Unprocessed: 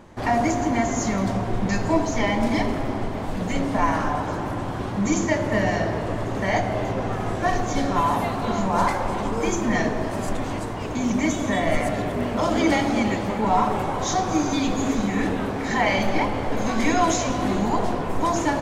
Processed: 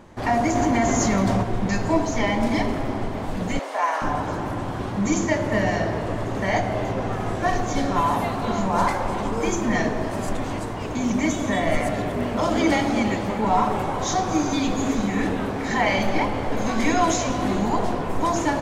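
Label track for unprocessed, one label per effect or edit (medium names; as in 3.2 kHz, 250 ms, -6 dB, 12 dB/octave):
0.550000	1.430000	level flattener amount 70%
3.590000	4.020000	high-pass 490 Hz 24 dB/octave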